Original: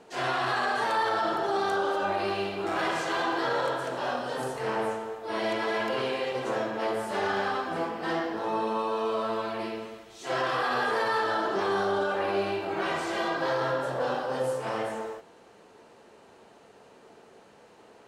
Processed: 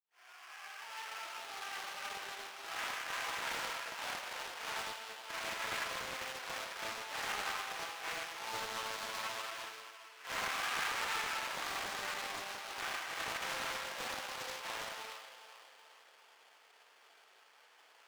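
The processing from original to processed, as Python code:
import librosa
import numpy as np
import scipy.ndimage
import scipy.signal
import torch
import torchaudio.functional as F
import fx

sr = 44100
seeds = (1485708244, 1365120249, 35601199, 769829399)

p1 = fx.fade_in_head(x, sr, length_s=4.28)
p2 = fx.echo_feedback(p1, sr, ms=403, feedback_pct=43, wet_db=-12)
p3 = fx.rider(p2, sr, range_db=5, speed_s=2.0)
p4 = p2 + (p3 * librosa.db_to_amplitude(0.0))
p5 = fx.sample_hold(p4, sr, seeds[0], rate_hz=3900.0, jitter_pct=20)
p6 = scipy.signal.sosfilt(scipy.signal.butter(2, 1500.0, 'highpass', fs=sr, output='sos'), p5)
p7 = fx.high_shelf(p6, sr, hz=5000.0, db=-9.5)
p8 = fx.rev_gated(p7, sr, seeds[1], gate_ms=130, shape='flat', drr_db=11.0)
p9 = fx.doppler_dist(p8, sr, depth_ms=0.46)
y = p9 * librosa.db_to_amplitude(-8.5)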